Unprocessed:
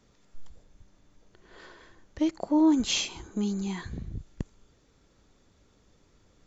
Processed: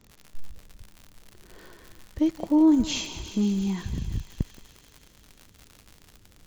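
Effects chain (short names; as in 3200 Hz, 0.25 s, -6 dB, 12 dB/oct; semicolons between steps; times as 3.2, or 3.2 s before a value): low shelf 350 Hz +11 dB; crackle 100/s -32 dBFS; thinning echo 0.175 s, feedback 79%, high-pass 760 Hz, level -11 dB; gain -3 dB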